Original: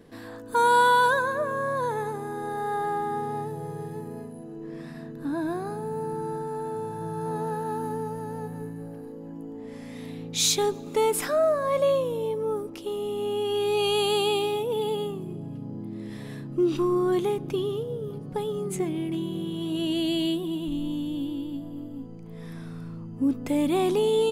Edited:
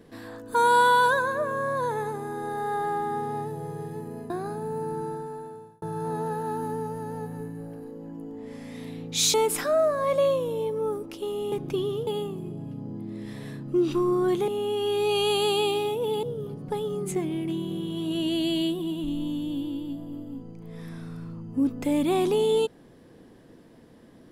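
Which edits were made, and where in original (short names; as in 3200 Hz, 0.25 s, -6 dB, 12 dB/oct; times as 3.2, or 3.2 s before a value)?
4.3–5.51 cut
6.2–7.03 fade out
10.55–10.98 cut
13.16–14.91 swap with 17.32–17.87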